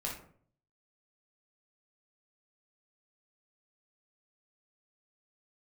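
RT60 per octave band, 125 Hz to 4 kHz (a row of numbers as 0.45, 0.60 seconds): 0.80, 0.65, 0.60, 0.50, 0.40, 0.25 seconds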